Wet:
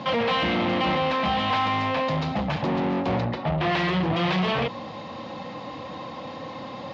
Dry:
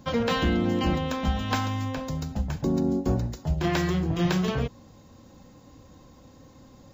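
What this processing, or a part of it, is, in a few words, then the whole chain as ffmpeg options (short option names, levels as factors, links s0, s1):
overdrive pedal into a guitar cabinet: -filter_complex "[0:a]asettb=1/sr,asplit=3[s0][s1][s2];[s0]atrim=end=3.254[s3];[s1]atrim=start=3.25:end=3.72,asetpts=PTS-STARTPTS,afade=t=in:d=0.004:c=qsin,afade=t=out:st=0.466:d=0.004:c=qsin,lowpass=2800[s4];[s2]atrim=start=3.716[s5];[s3][s4]acrossfade=d=0.004:c1=hsin:c2=qsin[s6];[s6][s5]acrossfade=d=0.004:c1=qsin:c2=hsin,asplit=2[s7][s8];[s8]highpass=f=720:p=1,volume=39.8,asoftclip=type=tanh:threshold=0.178[s9];[s7][s9]amix=inputs=2:normalize=0,lowpass=f=3100:p=1,volume=0.501,highpass=110,equalizer=f=270:t=q:w=4:g=-5,equalizer=f=400:t=q:w=4:g=-8,equalizer=f=1500:t=q:w=4:g=-8,lowpass=f=4000:w=0.5412,lowpass=f=4000:w=1.3066"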